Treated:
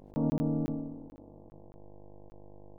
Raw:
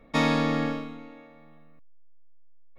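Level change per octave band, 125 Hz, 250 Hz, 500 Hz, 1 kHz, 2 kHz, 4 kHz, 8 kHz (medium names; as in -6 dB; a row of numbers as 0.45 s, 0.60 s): -2.0 dB, -4.0 dB, -8.5 dB, -17.0 dB, under -30 dB, under -25 dB, no reading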